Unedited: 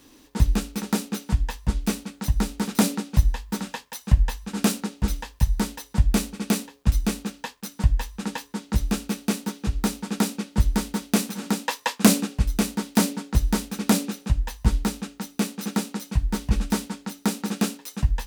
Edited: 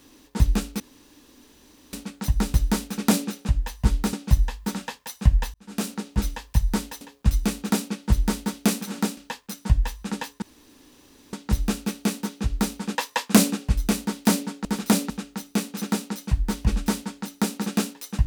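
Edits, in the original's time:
0.8–1.93 room tone
2.54–2.99 swap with 13.35–14.94
4.4–4.96 fade in linear
5.87–6.62 cut
8.56 insert room tone 0.91 s
10.18–11.65 move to 7.31

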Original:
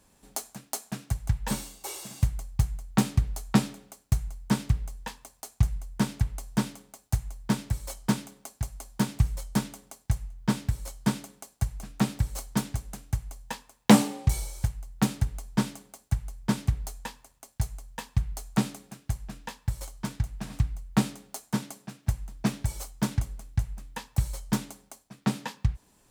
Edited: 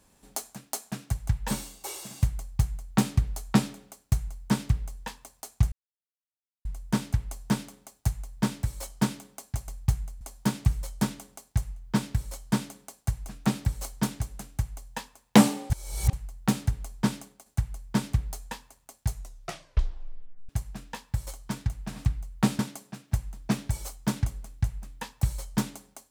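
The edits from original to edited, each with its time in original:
2.39–2.92 copy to 8.75
5.72 insert silence 0.93 s
14.24–14.67 reverse
15.74–16 fade out, to -6.5 dB
17.69 tape stop 1.34 s
21.13–21.54 cut

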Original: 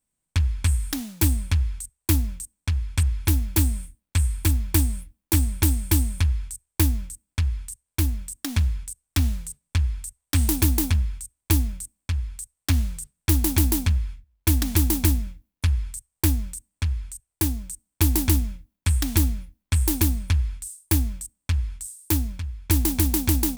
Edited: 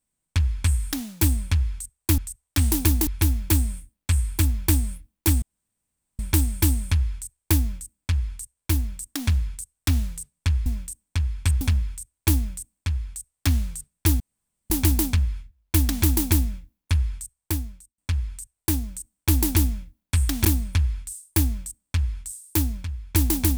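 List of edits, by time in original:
2.18–3.13 swap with 9.95–10.84
5.48 insert room tone 0.77 s
13.43 insert room tone 0.50 s
15.88–16.71 fade out
19.18–20 cut

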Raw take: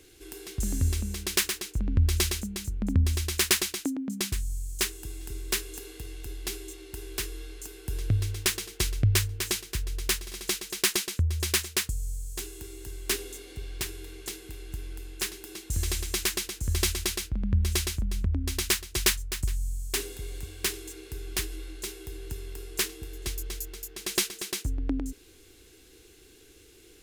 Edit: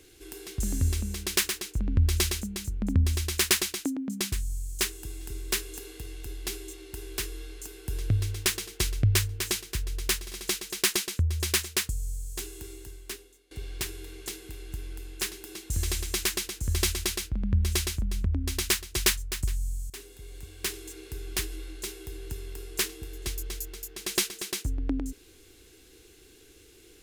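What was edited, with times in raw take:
12.71–13.51 fade out quadratic, to -22 dB
19.9–21.03 fade in linear, from -15.5 dB

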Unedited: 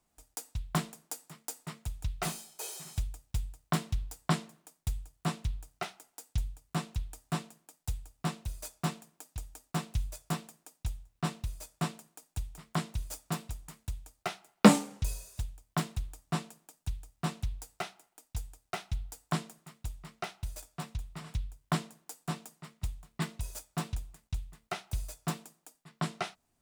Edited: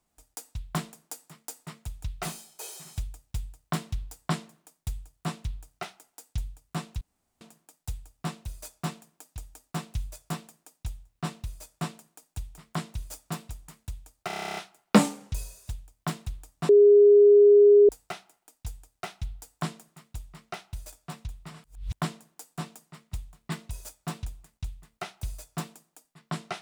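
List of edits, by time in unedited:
7.01–7.41 room tone
14.27 stutter 0.03 s, 11 plays
16.39–17.59 bleep 410 Hz -12 dBFS
21.34–21.63 reverse

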